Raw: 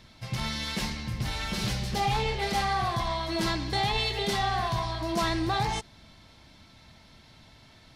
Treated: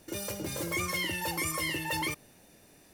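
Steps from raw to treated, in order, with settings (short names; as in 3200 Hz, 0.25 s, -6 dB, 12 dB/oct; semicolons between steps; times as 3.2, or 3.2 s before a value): wide varispeed 2.71×; gain -4.5 dB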